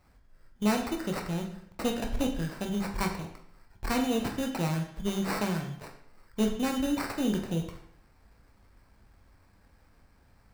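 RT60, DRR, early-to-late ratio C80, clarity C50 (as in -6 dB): 0.70 s, 2.5 dB, 11.0 dB, 7.5 dB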